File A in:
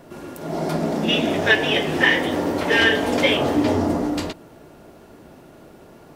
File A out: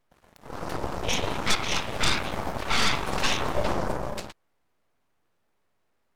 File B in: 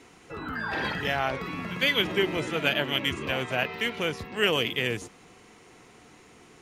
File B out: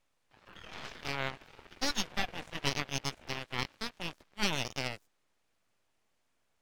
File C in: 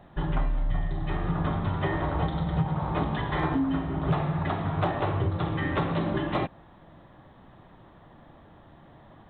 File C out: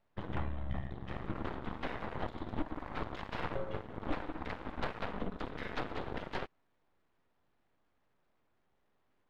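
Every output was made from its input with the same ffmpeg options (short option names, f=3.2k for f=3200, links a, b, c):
-af "aeval=exprs='abs(val(0))':c=same,aeval=exprs='0.708*(cos(1*acos(clip(val(0)/0.708,-1,1)))-cos(1*PI/2))+0.126*(cos(3*acos(clip(val(0)/0.708,-1,1)))-cos(3*PI/2))+0.316*(cos(4*acos(clip(val(0)/0.708,-1,1)))-cos(4*PI/2))+0.0355*(cos(7*acos(clip(val(0)/0.708,-1,1)))-cos(7*PI/2))+0.0251*(cos(8*acos(clip(val(0)/0.708,-1,1)))-cos(8*PI/2))':c=same,volume=-2dB"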